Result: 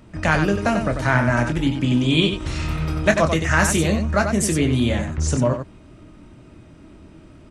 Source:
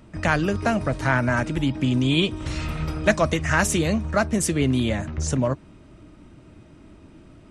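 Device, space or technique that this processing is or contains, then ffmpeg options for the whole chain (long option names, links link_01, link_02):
slapback doubling: -filter_complex "[0:a]asplit=3[link_01][link_02][link_03];[link_02]adelay=25,volume=-8dB[link_04];[link_03]adelay=92,volume=-7dB[link_05];[link_01][link_04][link_05]amix=inputs=3:normalize=0,volume=1.5dB"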